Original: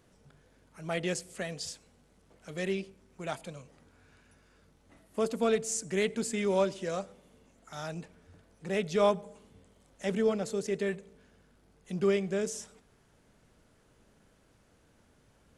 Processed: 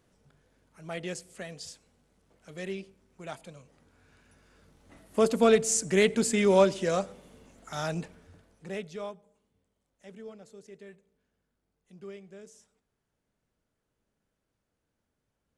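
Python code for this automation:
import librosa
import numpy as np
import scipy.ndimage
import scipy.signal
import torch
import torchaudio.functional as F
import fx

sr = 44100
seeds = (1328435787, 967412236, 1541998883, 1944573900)

y = fx.gain(x, sr, db=fx.line((3.6, -4.0), (5.23, 6.5), (8.01, 6.5), (8.73, -4.5), (9.18, -17.0)))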